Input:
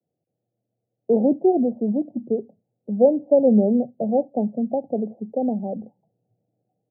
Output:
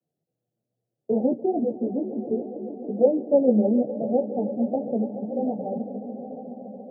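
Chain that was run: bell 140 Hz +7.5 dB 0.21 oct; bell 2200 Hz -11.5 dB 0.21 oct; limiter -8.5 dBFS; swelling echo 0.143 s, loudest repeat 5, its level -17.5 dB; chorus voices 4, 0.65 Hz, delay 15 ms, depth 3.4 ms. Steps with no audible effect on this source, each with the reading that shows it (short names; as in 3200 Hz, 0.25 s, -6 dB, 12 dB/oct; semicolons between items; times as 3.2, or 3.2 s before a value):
bell 2200 Hz: input band ends at 850 Hz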